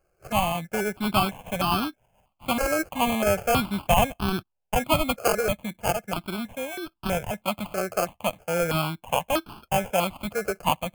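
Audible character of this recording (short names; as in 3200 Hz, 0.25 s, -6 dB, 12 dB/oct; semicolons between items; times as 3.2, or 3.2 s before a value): aliases and images of a low sample rate 1900 Hz, jitter 0%; notches that jump at a steady rate 3.1 Hz 950–2000 Hz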